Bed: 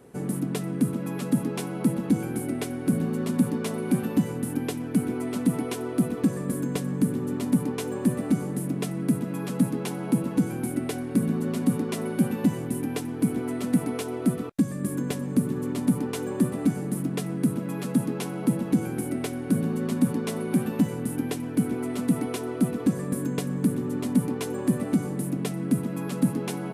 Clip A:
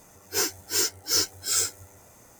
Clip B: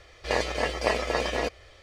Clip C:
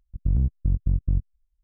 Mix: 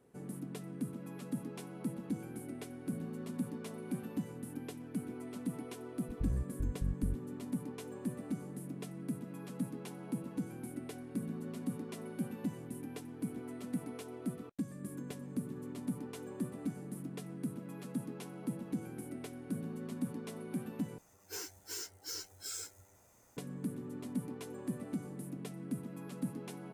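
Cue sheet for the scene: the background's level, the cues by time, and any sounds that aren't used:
bed -15 dB
5.95 add C -13 dB
20.98 replace with A -12.5 dB + compressor, threshold -25 dBFS
not used: B

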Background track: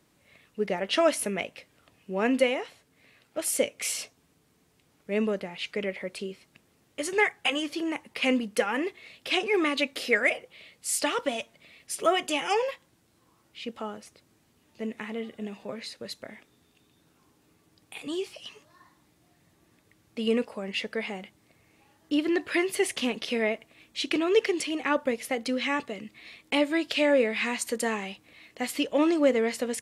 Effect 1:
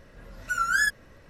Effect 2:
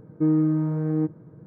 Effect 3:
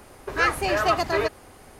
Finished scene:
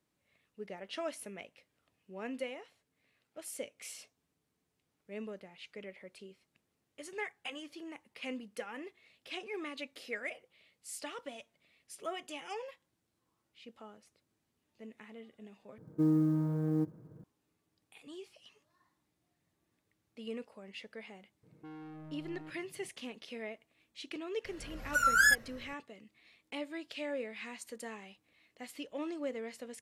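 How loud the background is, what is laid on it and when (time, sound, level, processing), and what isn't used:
background track -16 dB
15.78 replace with 2 -7.5 dB + companded quantiser 8-bit
21.43 add 2 -15.5 dB + soft clip -31.5 dBFS
24.45 add 1 -1.5 dB + high shelf 11000 Hz +7 dB
not used: 3

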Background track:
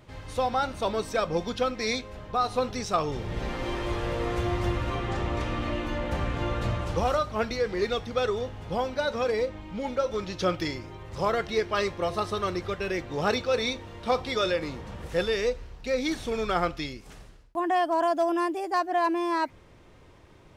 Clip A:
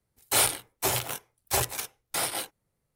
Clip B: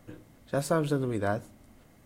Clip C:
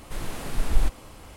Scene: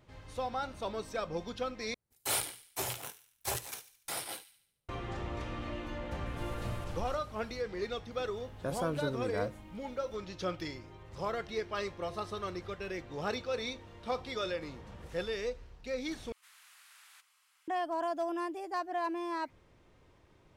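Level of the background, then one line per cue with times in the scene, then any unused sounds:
background track -9.5 dB
1.94 replace with A -9.5 dB + thin delay 72 ms, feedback 49%, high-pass 2000 Hz, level -13 dB
6.26 add C -14.5 dB + compressor, threshold -25 dBFS
8.11 add B -7.5 dB
16.32 replace with C -17 dB + HPF 1300 Hz 24 dB/oct

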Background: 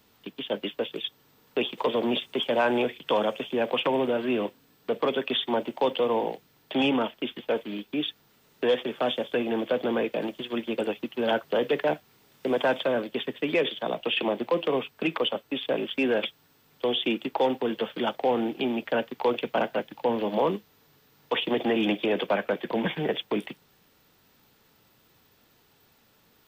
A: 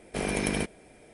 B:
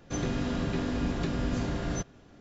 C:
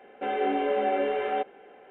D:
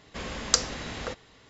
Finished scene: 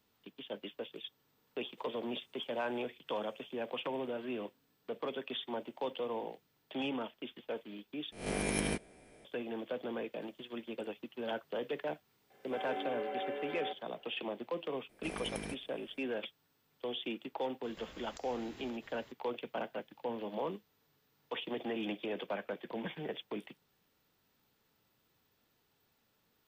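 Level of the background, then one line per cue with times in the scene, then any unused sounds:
background -13 dB
8.12 replace with A -7 dB + spectral swells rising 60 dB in 0.45 s
12.3 add C -11 dB + low shelf 430 Hz -6 dB
14.89 add A -13.5 dB
17.63 add D -4 dB + compressor 8:1, threshold -47 dBFS
not used: B

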